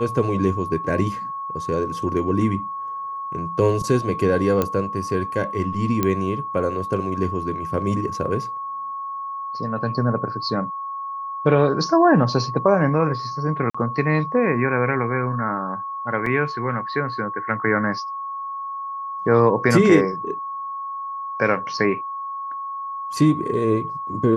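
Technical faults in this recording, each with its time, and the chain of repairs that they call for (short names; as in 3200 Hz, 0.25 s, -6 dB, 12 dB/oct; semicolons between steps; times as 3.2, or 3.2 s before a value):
tone 1100 Hz -27 dBFS
4.62 pop -8 dBFS
6.03 pop -7 dBFS
13.7–13.74 gap 45 ms
16.26 gap 3.4 ms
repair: de-click; notch 1100 Hz, Q 30; interpolate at 13.7, 45 ms; interpolate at 16.26, 3.4 ms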